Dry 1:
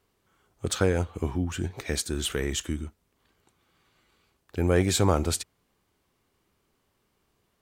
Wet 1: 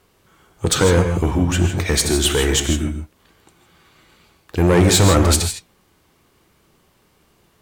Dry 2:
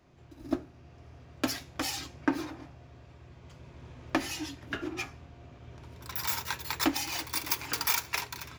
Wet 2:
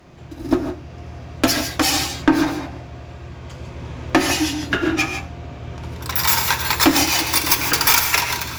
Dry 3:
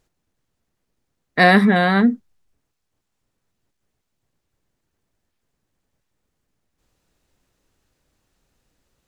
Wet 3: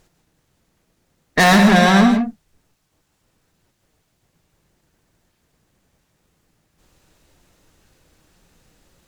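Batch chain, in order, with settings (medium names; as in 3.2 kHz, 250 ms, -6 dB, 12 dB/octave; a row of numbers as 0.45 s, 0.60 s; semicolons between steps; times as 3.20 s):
flange 1.9 Hz, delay 5.4 ms, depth 1.2 ms, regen +81%; valve stage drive 26 dB, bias 0.2; gated-style reverb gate 180 ms rising, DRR 6 dB; peak normalisation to -3 dBFS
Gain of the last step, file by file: +18.0 dB, +20.5 dB, +16.0 dB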